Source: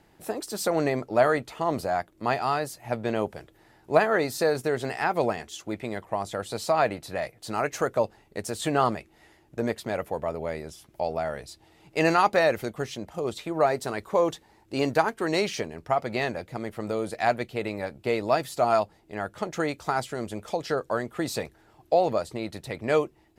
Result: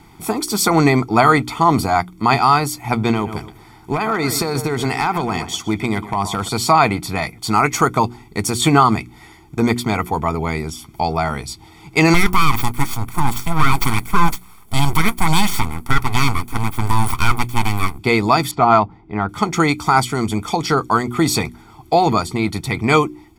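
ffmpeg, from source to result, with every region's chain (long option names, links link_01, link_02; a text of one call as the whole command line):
ffmpeg -i in.wav -filter_complex "[0:a]asettb=1/sr,asplit=3[link_01][link_02][link_03];[link_01]atrim=end=3.114[link_04];[link_02]atrim=start=3.11:end=6.49,asetpts=PTS-STARTPTS,afade=type=in:duration=0.004:curve=qsin,afade=type=out:start_time=3.376:duration=0.004:curve=qsin,asplit=2[link_05][link_06];[link_06]adelay=123,lowpass=frequency=3700:poles=1,volume=-15dB,asplit=2[link_07][link_08];[link_08]adelay=123,lowpass=frequency=3700:poles=1,volume=0.28,asplit=2[link_09][link_10];[link_10]adelay=123,lowpass=frequency=3700:poles=1,volume=0.28[link_11];[link_05][link_07][link_09][link_11]amix=inputs=4:normalize=0,atrim=end_sample=149058,acompressor=threshold=-25dB:ratio=10:attack=3.2:release=140:knee=1:detection=peak,asoftclip=type=hard:threshold=-22dB[link_12];[link_03]atrim=start=6.486[link_13];[link_04][link_12]acrossfade=duration=0.004:curve1=hsin:curve2=qsin[link_14];[link_14][link_13]acrossfade=duration=0.004:curve1=qsin:curve2=hsin,asettb=1/sr,asplit=3[link_15][link_16][link_17];[link_15]atrim=end=12.144[link_18];[link_16]atrim=start=12.14:end=17.99,asetpts=PTS-STARTPTS,afade=type=in:duration=0.004:curve=qsin,afade=type=out:start_time=5.846:duration=0.004:curve=qsin,highshelf=frequency=7700:width_type=q:width=1.5:gain=11,aeval=exprs='abs(val(0))':channel_layout=same[link_19];[link_17]atrim=start=17.986[link_20];[link_18][link_19]acrossfade=duration=0.004:curve1=hsin:curve2=qsin[link_21];[link_21][link_20]acrossfade=duration=0.004:curve1=qsin:curve2=hsin,asettb=1/sr,asplit=3[link_22][link_23][link_24];[link_22]atrim=end=18.514[link_25];[link_23]atrim=start=18.51:end=19.29,asetpts=PTS-STARTPTS,afade=type=in:duration=0.004:curve=qsin,afade=type=out:start_time=0.776:duration=0.004:curve=qsin,highshelf=frequency=3400:gain=-10,adynamicsmooth=sensitivity=1:basefreq=3000[link_26];[link_24]atrim=start=19.286[link_27];[link_25][link_26]acrossfade=duration=0.004:curve1=hsin:curve2=qsin[link_28];[link_28][link_27]acrossfade=duration=0.004:curve1=qsin:curve2=hsin,aecho=1:1:0.9:0.99,bandreject=frequency=60.28:width_type=h:width=4,bandreject=frequency=120.56:width_type=h:width=4,bandreject=frequency=180.84:width_type=h:width=4,bandreject=frequency=241.12:width_type=h:width=4,bandreject=frequency=301.4:width_type=h:width=4,bandreject=frequency=361.68:width_type=h:width=4,alimiter=level_in=12.5dB:limit=-1dB:release=50:level=0:latency=1,volume=-1dB" out.wav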